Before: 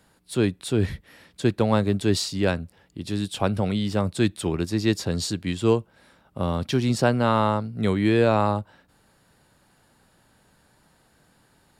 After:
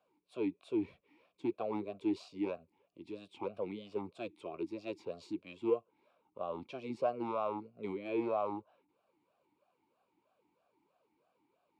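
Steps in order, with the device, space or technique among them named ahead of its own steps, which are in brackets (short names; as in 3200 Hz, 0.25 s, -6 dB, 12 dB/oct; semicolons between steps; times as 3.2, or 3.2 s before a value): talk box (tube stage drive 13 dB, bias 0.4; vowel sweep a-u 3.1 Hz); gain -1.5 dB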